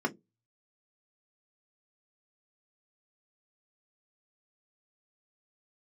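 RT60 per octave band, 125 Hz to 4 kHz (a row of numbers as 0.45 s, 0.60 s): 0.45 s, 0.25 s, 0.25 s, 0.10 s, 0.10 s, 0.10 s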